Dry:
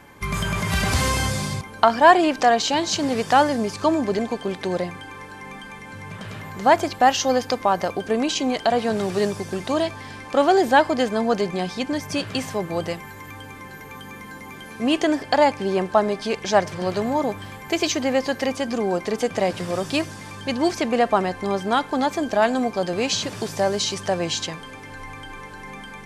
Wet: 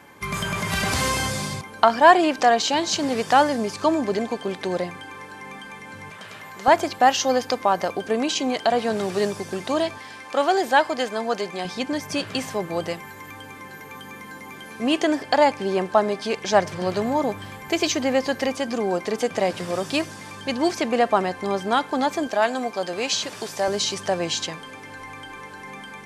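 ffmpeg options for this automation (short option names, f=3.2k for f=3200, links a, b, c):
-af "asetnsamples=n=441:p=0,asendcmd='6.1 highpass f 710;6.68 highpass f 190;9.98 highpass f 590;11.65 highpass f 170;16.52 highpass f 62;18.47 highpass f 170;22.27 highpass f 510;23.68 highpass f 170',highpass=f=170:p=1"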